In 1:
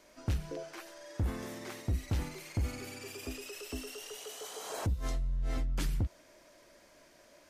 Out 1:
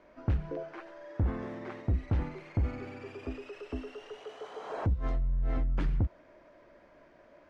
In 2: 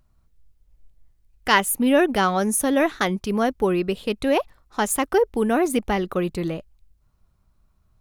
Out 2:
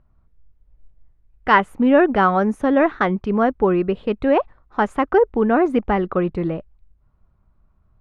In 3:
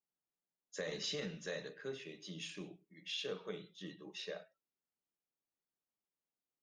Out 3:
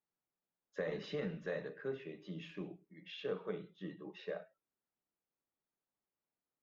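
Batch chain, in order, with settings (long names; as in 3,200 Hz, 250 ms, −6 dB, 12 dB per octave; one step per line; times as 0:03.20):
low-pass filter 1,700 Hz 12 dB per octave
dynamic equaliser 1,300 Hz, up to +3 dB, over −36 dBFS, Q 1.5
level +3.5 dB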